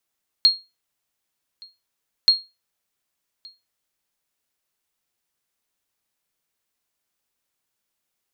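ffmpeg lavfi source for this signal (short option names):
-f lavfi -i "aevalsrc='0.473*(sin(2*PI*4260*mod(t,1.83))*exp(-6.91*mod(t,1.83)/0.24)+0.0398*sin(2*PI*4260*max(mod(t,1.83)-1.17,0))*exp(-6.91*max(mod(t,1.83)-1.17,0)/0.24))':d=3.66:s=44100"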